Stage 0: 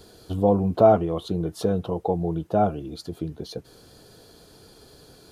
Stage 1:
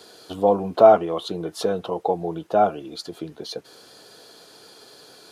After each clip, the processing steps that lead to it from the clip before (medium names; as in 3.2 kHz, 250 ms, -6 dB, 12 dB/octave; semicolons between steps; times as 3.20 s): frequency weighting A; trim +5.5 dB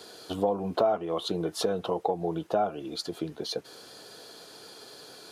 compression 4:1, threshold -24 dBFS, peak gain reduction 14 dB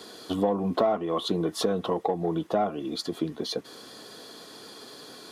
in parallel at -9 dB: saturation -26.5 dBFS, distortion -9 dB; on the sum: small resonant body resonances 240/1100/1900/3400 Hz, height 8 dB, ringing for 25 ms; trim -1.5 dB